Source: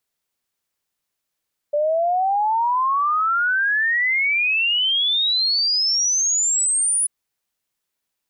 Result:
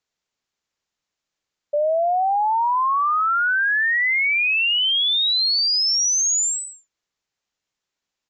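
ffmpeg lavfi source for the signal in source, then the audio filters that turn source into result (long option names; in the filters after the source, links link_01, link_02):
-f lavfi -i "aevalsrc='0.15*clip(min(t,5.34-t)/0.01,0,1)*sin(2*PI*580*5.34/log(10000/580)*(exp(log(10000/580)*t/5.34)-1))':duration=5.34:sample_rate=44100"
-af "aresample=16000,aresample=44100"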